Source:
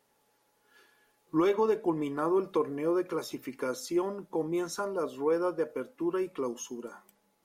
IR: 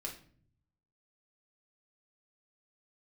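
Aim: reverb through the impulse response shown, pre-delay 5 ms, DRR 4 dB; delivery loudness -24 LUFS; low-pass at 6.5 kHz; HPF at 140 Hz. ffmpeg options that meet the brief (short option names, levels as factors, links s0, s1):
-filter_complex "[0:a]highpass=140,lowpass=6500,asplit=2[s0][s1];[1:a]atrim=start_sample=2205,adelay=5[s2];[s1][s2]afir=irnorm=-1:irlink=0,volume=0.708[s3];[s0][s3]amix=inputs=2:normalize=0,volume=1.88"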